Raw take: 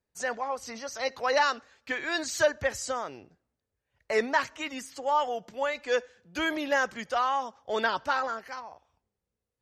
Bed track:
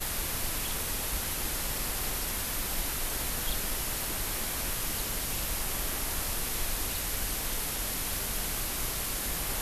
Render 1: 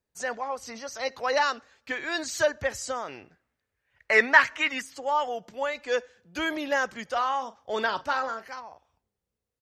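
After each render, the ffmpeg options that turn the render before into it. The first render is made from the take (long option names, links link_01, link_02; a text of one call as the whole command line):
ffmpeg -i in.wav -filter_complex "[0:a]asettb=1/sr,asplit=3[link_01][link_02][link_03];[link_01]atrim=end=3.084[link_04];[link_02]atrim=start=3.08:end=4.82,asetpts=PTS-STARTPTS,afade=type=in:duration=0.004:curve=qsin,afade=type=out:start_time=1.736:duration=0.004:curve=qsin,equalizer=frequency=1900:width=0.86:gain=12.5[link_05];[link_03]atrim=start=4.816[link_06];[link_04][link_05]acrossfade=duration=0.004:curve1=hsin:curve2=qsin[link_07];[link_07][link_06]acrossfade=duration=0.004:curve1=qsin:curve2=hsin,asplit=3[link_08][link_09][link_10];[link_08]afade=type=out:start_time=7.15:duration=0.02[link_11];[link_09]asplit=2[link_12][link_13];[link_13]adelay=42,volume=-14dB[link_14];[link_12][link_14]amix=inputs=2:normalize=0,afade=type=in:start_time=7.15:duration=0.02,afade=type=out:start_time=8.51:duration=0.02[link_15];[link_10]afade=type=in:start_time=8.51:duration=0.02[link_16];[link_11][link_15][link_16]amix=inputs=3:normalize=0" out.wav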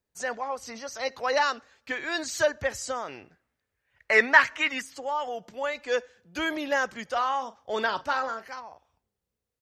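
ffmpeg -i in.wav -filter_complex "[0:a]asettb=1/sr,asplit=3[link_01][link_02][link_03];[link_01]atrim=end=4.894[link_04];[link_02]atrim=start=4.89:end=5.64,asetpts=PTS-STARTPTS,afade=type=in:duration=0.004:curve=qsin,afade=type=out:start_time=0.746:duration=0.004:curve=qsin,acompressor=threshold=-31dB:ratio=1.5:attack=3.2:release=140:knee=1:detection=peak[link_05];[link_03]atrim=start=5.636[link_06];[link_04][link_05]acrossfade=duration=0.004:curve1=hsin:curve2=qsin[link_07];[link_07][link_06]acrossfade=duration=0.004:curve1=qsin:curve2=hsin" out.wav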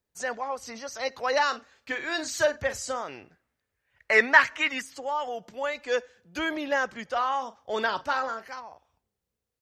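ffmpeg -i in.wav -filter_complex "[0:a]asettb=1/sr,asplit=3[link_01][link_02][link_03];[link_01]atrim=end=1.464[link_04];[link_02]atrim=start=1.46:end=3.03,asetpts=PTS-STARTPTS,afade=type=in:duration=0.004:curve=qsin,afade=type=out:start_time=1.566:duration=0.004:curve=qsin,asplit=2[link_05][link_06];[link_06]adelay=42,volume=-12dB[link_07];[link_05][link_07]amix=inputs=2:normalize=0,atrim=end_sample=69237[link_08];[link_03]atrim=start=3.026[link_09];[link_04][link_08]acrossfade=duration=0.004:curve1=hsin:curve2=qsin[link_10];[link_10][link_09]acrossfade=duration=0.004:curve1=qsin:curve2=hsin,asettb=1/sr,asplit=3[link_11][link_12][link_13];[link_11]atrim=end=6.394[link_14];[link_12]atrim=start=6.39:end=7.32,asetpts=PTS-STARTPTS,afade=type=in:duration=0.004:curve=qsin,afade=type=out:start_time=0.926:duration=0.004:curve=qsin,highshelf=frequency=6600:gain=-8[link_15];[link_13]atrim=start=7.316[link_16];[link_14][link_15]acrossfade=duration=0.004:curve1=hsin:curve2=qsin[link_17];[link_17][link_16]acrossfade=duration=0.004:curve1=qsin:curve2=hsin" out.wav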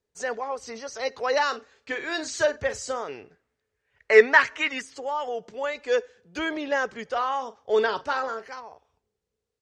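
ffmpeg -i in.wav -af "lowpass=frequency=8700:width=0.5412,lowpass=frequency=8700:width=1.3066,equalizer=frequency=430:width_type=o:width=0.28:gain=11.5" out.wav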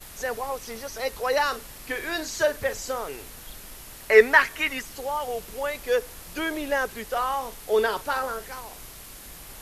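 ffmpeg -i in.wav -i bed.wav -filter_complex "[1:a]volume=-10.5dB[link_01];[0:a][link_01]amix=inputs=2:normalize=0" out.wav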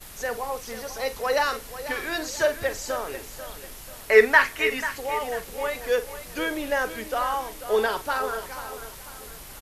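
ffmpeg -i in.wav -filter_complex "[0:a]asplit=2[link_01][link_02];[link_02]adelay=45,volume=-13dB[link_03];[link_01][link_03]amix=inputs=2:normalize=0,aecho=1:1:491|982|1473|1964:0.237|0.0925|0.0361|0.0141" out.wav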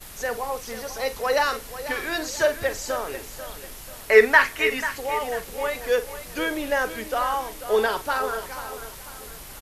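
ffmpeg -i in.wav -af "volume=1.5dB,alimiter=limit=-2dB:level=0:latency=1" out.wav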